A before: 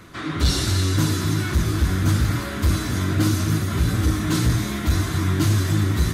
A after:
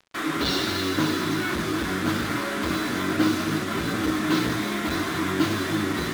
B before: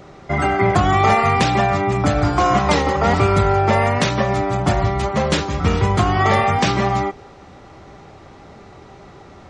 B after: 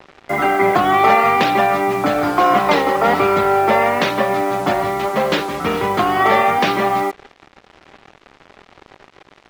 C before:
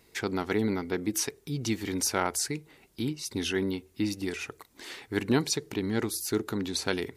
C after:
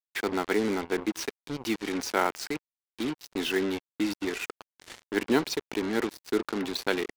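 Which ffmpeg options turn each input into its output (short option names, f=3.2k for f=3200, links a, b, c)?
-filter_complex "[0:a]acrossover=split=210 4500:gain=0.0631 1 0.1[a][b][c];[a][b][c]amix=inputs=3:normalize=0,acrusher=bits=5:mix=0:aa=0.5,volume=3dB"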